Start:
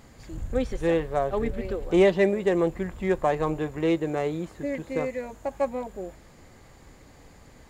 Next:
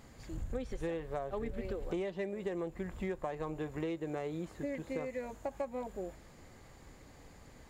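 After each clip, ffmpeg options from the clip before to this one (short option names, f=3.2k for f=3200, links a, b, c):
-af "acompressor=threshold=-29dB:ratio=16,volume=-4.5dB"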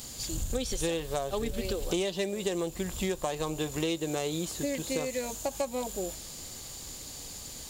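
-af "aexciter=amount=5.8:drive=6.8:freq=2.9k,volume=6dB"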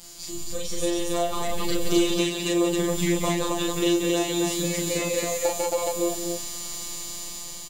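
-af "afftfilt=real='hypot(re,im)*cos(PI*b)':imag='0':win_size=1024:overlap=0.75,dynaudnorm=f=380:g=5:m=7.5dB,aecho=1:1:37.9|180.8|271.1:0.891|0.501|0.891"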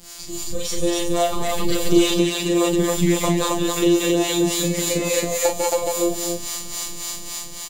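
-filter_complex "[0:a]asplit=2[a][b];[b]aeval=exprs='sgn(val(0))*max(abs(val(0))-0.00944,0)':c=same,volume=-5dB[c];[a][c]amix=inputs=2:normalize=0,acrossover=split=480[d][e];[d]aeval=exprs='val(0)*(1-0.7/2+0.7/2*cos(2*PI*3.6*n/s))':c=same[f];[e]aeval=exprs='val(0)*(1-0.7/2-0.7/2*cos(2*PI*3.6*n/s))':c=same[g];[f][g]amix=inputs=2:normalize=0,volume=4.5dB"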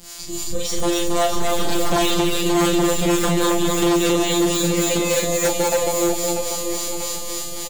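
-filter_complex "[0:a]asplit=2[a][b];[b]aecho=0:1:641|1282|1923|2564|3205:0.398|0.175|0.0771|0.0339|0.0149[c];[a][c]amix=inputs=2:normalize=0,aeval=exprs='0.2*(abs(mod(val(0)/0.2+3,4)-2)-1)':c=same,volume=2dB"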